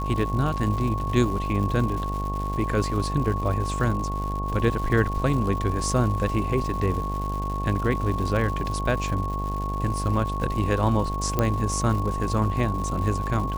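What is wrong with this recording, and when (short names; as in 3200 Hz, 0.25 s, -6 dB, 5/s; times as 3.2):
buzz 50 Hz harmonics 20 -29 dBFS
crackle 250/s -32 dBFS
tone 1100 Hz -30 dBFS
11.39 pop -9 dBFS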